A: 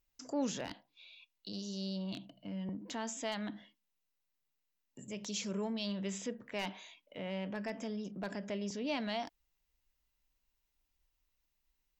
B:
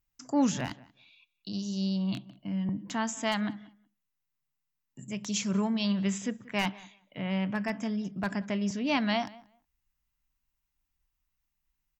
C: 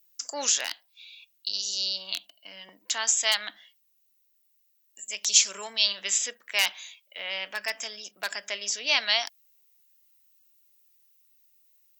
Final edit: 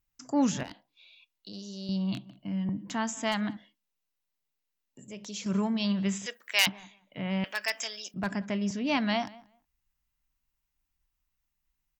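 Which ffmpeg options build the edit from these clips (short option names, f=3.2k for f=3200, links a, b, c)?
-filter_complex "[0:a]asplit=2[a][b];[2:a]asplit=2[c][d];[1:a]asplit=5[e][f][g][h][i];[e]atrim=end=0.632[j];[a]atrim=start=0.628:end=1.892[k];[f]atrim=start=1.888:end=3.572[l];[b]atrim=start=3.568:end=5.462[m];[g]atrim=start=5.458:end=6.262[n];[c]atrim=start=6.258:end=6.672[o];[h]atrim=start=6.668:end=7.442[p];[d]atrim=start=7.438:end=8.142[q];[i]atrim=start=8.138[r];[j][k]acrossfade=d=0.004:c1=hsin:c2=hsin[s];[s][l]acrossfade=d=0.004:c1=hsin:c2=hsin[t];[t][m]acrossfade=d=0.004:c1=hsin:c2=hsin[u];[u][n]acrossfade=d=0.004:c1=hsin:c2=hsin[v];[v][o]acrossfade=d=0.004:c1=hsin:c2=hsin[w];[w][p]acrossfade=d=0.004:c1=hsin:c2=hsin[x];[x][q]acrossfade=d=0.004:c1=hsin:c2=hsin[y];[y][r]acrossfade=d=0.004:c1=hsin:c2=hsin"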